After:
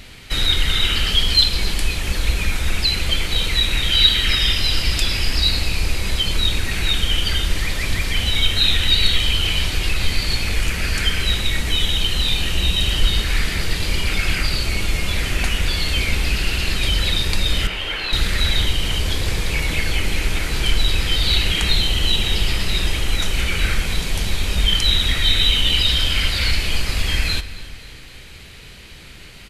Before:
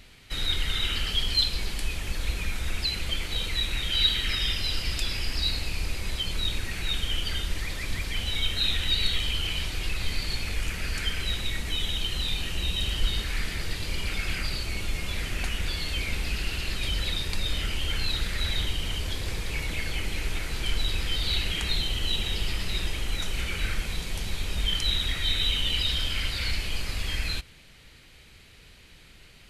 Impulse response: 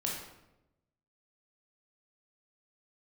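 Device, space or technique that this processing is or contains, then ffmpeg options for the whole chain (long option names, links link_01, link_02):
compressed reverb return: -filter_complex "[0:a]asettb=1/sr,asplit=3[link_01][link_02][link_03];[link_01]atrim=end=17.674[link_04];[link_02]atrim=start=17.67:end=18.13,asetpts=PTS-STARTPTS,afade=type=in:duration=0.004:curve=qsin,afade=type=out:start_time=0.456:duration=0.004:curve=qsin,acrossover=split=350 3400:gain=0.0794 1 0.158[link_05][link_06][link_07];[link_05][link_06][link_07]amix=inputs=3:normalize=0[link_08];[link_03]atrim=start=18.126[link_09];[link_04][link_08]acrossfade=duration=0.004:curve1=hsin:curve2=qsin[link_10];[link_10][link_09]acrossfade=duration=0.004:curve1=qsin:curve2=hsin,asplit=2[link_11][link_12];[1:a]atrim=start_sample=2205[link_13];[link_12][link_13]afir=irnorm=-1:irlink=0,acompressor=threshold=-29dB:ratio=6,volume=-8dB[link_14];[link_11][link_14]amix=inputs=2:normalize=0,aecho=1:1:268|536|804|1072|1340:0.112|0.0651|0.0377|0.0219|0.0127,volume=8.5dB"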